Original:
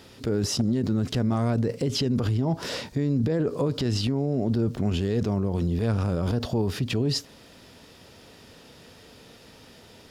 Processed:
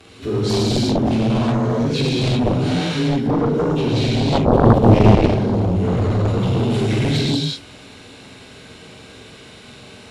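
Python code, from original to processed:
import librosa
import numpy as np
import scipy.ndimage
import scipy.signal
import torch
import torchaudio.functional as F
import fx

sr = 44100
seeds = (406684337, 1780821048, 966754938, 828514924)

y = fx.partial_stretch(x, sr, pct=92)
y = fx.peak_eq(y, sr, hz=96.0, db=13.0, octaves=2.8, at=(4.31, 4.96))
y = fx.rev_gated(y, sr, seeds[0], gate_ms=400, shape='flat', drr_db=-7.5)
y = fx.cheby_harmonics(y, sr, harmonics=(7,), levels_db=(-6,), full_scale_db=0.5)
y = y * 10.0 ** (-4.0 / 20.0)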